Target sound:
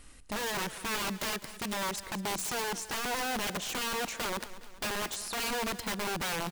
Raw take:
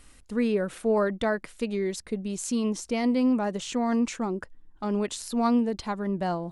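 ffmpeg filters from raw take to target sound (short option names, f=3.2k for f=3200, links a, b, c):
-filter_complex "[0:a]asettb=1/sr,asplit=3[a][b][c];[a]atrim=end=3.474[d];[b]atrim=start=3.47:end=5.76,asetpts=PTS-STARTPTS,afade=t=in:d=0.004:c=qsin,afade=t=out:st=2.286:d=0.004:c=qsin,equalizer=f=690:t=o:w=0.46:g=11[e];[c]atrim=start=5.756[f];[d][e]acrossfade=d=0.004:c1=hsin:c2=qsin[g];[g][f]acrossfade=d=0.004:c1=qsin:c2=hsin,acompressor=threshold=-27dB:ratio=5,aeval=exprs='(mod(26.6*val(0)+1,2)-1)/26.6':c=same,aecho=1:1:207|414|621|828|1035:0.168|0.0856|0.0437|0.0223|0.0114"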